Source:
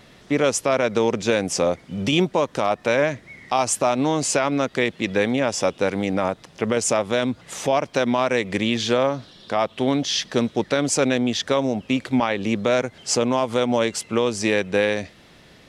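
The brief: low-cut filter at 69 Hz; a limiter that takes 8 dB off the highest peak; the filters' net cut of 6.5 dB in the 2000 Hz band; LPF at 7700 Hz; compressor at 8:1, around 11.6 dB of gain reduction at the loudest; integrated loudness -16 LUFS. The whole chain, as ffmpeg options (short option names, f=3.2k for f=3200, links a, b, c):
-af "highpass=69,lowpass=7.7k,equalizer=f=2k:t=o:g=-8.5,acompressor=threshold=-28dB:ratio=8,volume=18dB,alimiter=limit=-5dB:level=0:latency=1"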